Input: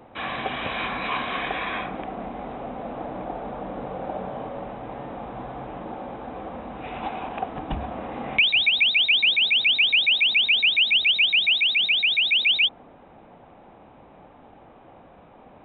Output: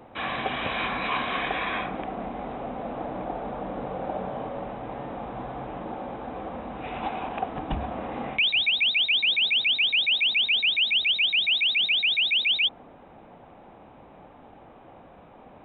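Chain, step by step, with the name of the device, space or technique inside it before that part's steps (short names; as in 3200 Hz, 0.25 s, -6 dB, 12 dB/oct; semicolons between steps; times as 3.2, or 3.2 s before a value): compression on the reversed sound (reverse; compressor, threshold -20 dBFS, peak gain reduction 6 dB; reverse)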